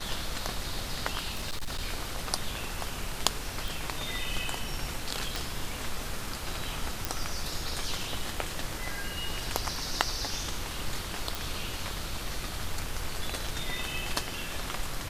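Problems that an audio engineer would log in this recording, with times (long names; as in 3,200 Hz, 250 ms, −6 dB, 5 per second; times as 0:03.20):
0:01.33–0:01.82: clipping −29 dBFS
0:03.68: click
0:05.36: click
0:07.05: click
0:11.35: click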